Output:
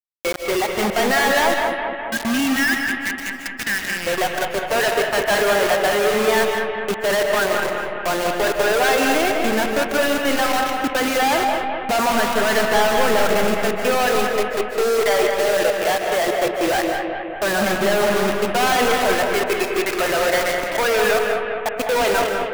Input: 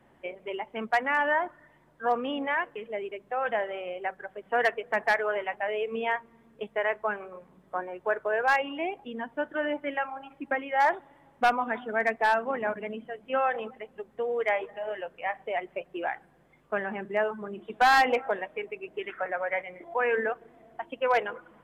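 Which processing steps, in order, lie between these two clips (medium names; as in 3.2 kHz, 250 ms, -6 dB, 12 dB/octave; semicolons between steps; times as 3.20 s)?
spectral selection erased 1.56–3.91 s, 380–1600 Hz; tape speed -4%; companded quantiser 2-bit; bucket-brigade echo 206 ms, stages 4096, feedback 65%, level -6 dB; algorithmic reverb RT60 0.6 s, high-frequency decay 0.6×, pre-delay 110 ms, DRR 6 dB; trim +7 dB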